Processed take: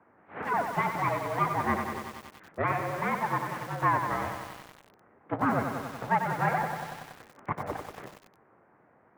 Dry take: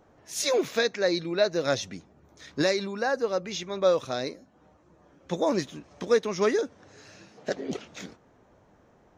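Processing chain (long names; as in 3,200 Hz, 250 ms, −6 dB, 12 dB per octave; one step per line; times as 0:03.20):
full-wave rectification
single-sideband voice off tune −54 Hz 170–2,100 Hz
feedback echo at a low word length 94 ms, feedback 80%, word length 8 bits, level −6.5 dB
level +3 dB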